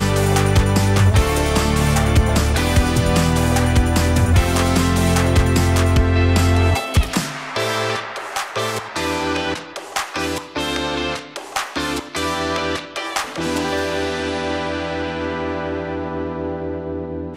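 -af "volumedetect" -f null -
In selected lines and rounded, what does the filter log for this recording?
mean_volume: -18.3 dB
max_volume: -5.5 dB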